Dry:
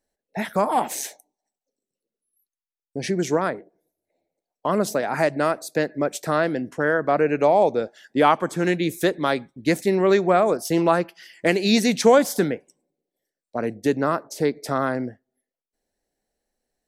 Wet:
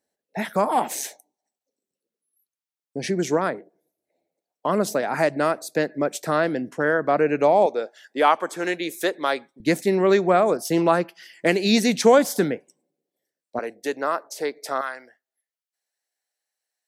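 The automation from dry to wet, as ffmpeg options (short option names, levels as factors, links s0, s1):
-af "asetnsamples=n=441:p=0,asendcmd='7.66 highpass f 420;9.6 highpass f 120;13.59 highpass f 510;14.81 highpass f 1200',highpass=130"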